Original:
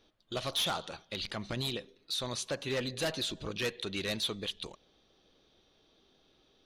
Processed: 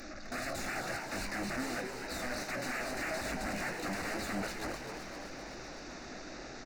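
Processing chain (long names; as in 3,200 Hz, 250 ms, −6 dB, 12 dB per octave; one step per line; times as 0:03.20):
linear delta modulator 32 kbit/s, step −51.5 dBFS
in parallel at +0.5 dB: brickwall limiter −37.5 dBFS, peak gain reduction 11.5 dB
on the sum: wave folding −38.5 dBFS
phaser with its sweep stopped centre 650 Hz, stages 8
double-tracking delay 20 ms −10.5 dB
echo with shifted repeats 257 ms, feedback 61%, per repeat +120 Hz, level −7.5 dB
level +9 dB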